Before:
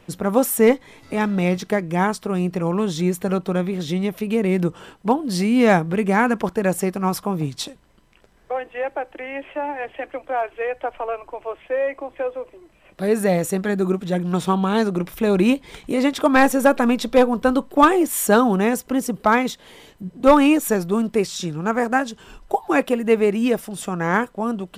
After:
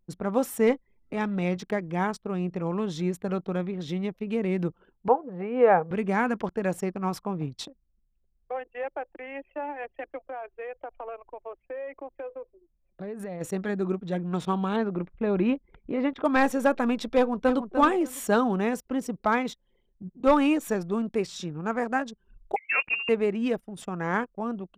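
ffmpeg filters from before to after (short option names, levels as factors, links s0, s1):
-filter_complex "[0:a]asettb=1/sr,asplit=3[s0][s1][s2];[s0]atrim=end=5.084[s3];[s1]atrim=start=5.08:end=5.91,asetpts=PTS-STARTPTS,afade=t=in:d=0.004:c=qsin,afade=t=out:st=0.826:d=0.004:c=qsin,highpass=190,equalizer=f=220:t=q:w=4:g=-9,equalizer=f=310:t=q:w=4:g=-8,equalizer=f=490:t=q:w=4:g=10,equalizer=f=810:t=q:w=4:g=7,equalizer=f=1300:t=q:w=4:g=3,equalizer=f=2100:t=q:w=4:g=-4,lowpass=f=2300:w=0.5412,lowpass=f=2300:w=1.3066[s4];[s2]atrim=start=5.906[s5];[s3][s4]acrossfade=d=0.004:c1=hsin:c2=qsin[s6];[s6][s5]acrossfade=d=0.004:c1=qsin:c2=hsin,asplit=3[s7][s8][s9];[s7]afade=t=out:st=10.26:d=0.02[s10];[s8]acompressor=threshold=0.0562:ratio=6:attack=3.2:release=140:knee=1:detection=peak,afade=t=in:st=10.26:d=0.02,afade=t=out:st=13.4:d=0.02[s11];[s9]afade=t=in:st=13.4:d=0.02[s12];[s10][s11][s12]amix=inputs=3:normalize=0,asettb=1/sr,asplit=3[s13][s14][s15];[s13]atrim=end=14.764[s16];[s14]atrim=start=14.76:end=16.25,asetpts=PTS-STARTPTS,afade=t=in:d=0.004:c=qsin,afade=t=out:st=1.486:d=0.004:c=qsin,lowpass=2400[s17];[s15]atrim=start=16.246[s18];[s16][s17]acrossfade=d=0.004:c1=hsin:c2=qsin[s19];[s19][s18]acrossfade=d=0.004:c1=qsin:c2=hsin,asplit=2[s20][s21];[s21]afade=t=in:st=17.15:d=0.01,afade=t=out:st=17.6:d=0.01,aecho=0:1:300|600|900:0.398107|0.0796214|0.0159243[s22];[s20][s22]amix=inputs=2:normalize=0,asettb=1/sr,asplit=3[s23][s24][s25];[s23]atrim=end=22.564[s26];[s24]atrim=start=22.56:end=23.09,asetpts=PTS-STARTPTS,afade=t=in:d=0.004:c=qsin,afade=t=out:st=0.526:d=0.004:c=qsin,lowpass=f=2600:t=q:w=0.5098,lowpass=f=2600:t=q:w=0.6013,lowpass=f=2600:t=q:w=0.9,lowpass=f=2600:t=q:w=2.563,afreqshift=-3000[s27];[s25]atrim=start=23.086[s28];[s26][s27]acrossfade=d=0.004:c1=hsin:c2=qsin[s29];[s29][s28]acrossfade=d=0.004:c1=qsin:c2=hsin,anlmdn=6.31,equalizer=f=12000:w=0.76:g=-9.5,volume=0.422"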